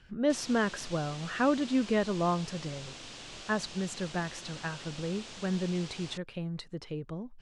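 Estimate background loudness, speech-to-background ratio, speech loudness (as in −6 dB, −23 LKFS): −44.5 LKFS, 11.5 dB, −33.0 LKFS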